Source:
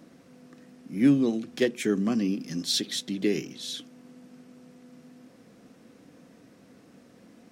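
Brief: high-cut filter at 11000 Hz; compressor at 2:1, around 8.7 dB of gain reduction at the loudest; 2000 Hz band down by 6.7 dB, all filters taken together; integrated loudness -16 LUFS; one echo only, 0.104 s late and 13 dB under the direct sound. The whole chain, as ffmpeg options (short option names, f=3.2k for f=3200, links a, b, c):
-af "lowpass=11k,equalizer=f=2k:t=o:g=-8,acompressor=threshold=-31dB:ratio=2,aecho=1:1:104:0.224,volume=16.5dB"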